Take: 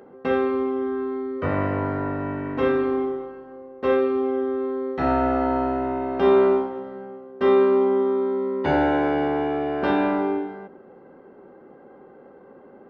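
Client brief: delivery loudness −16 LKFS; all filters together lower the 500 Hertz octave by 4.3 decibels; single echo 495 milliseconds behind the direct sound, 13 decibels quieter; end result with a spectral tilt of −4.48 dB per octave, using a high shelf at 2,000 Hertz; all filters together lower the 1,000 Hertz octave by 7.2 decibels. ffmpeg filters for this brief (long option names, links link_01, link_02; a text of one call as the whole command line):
ffmpeg -i in.wav -af "equalizer=frequency=500:width_type=o:gain=-4.5,equalizer=frequency=1000:width_type=o:gain=-7.5,highshelf=frequency=2000:gain=-3.5,aecho=1:1:495:0.224,volume=10.5dB" out.wav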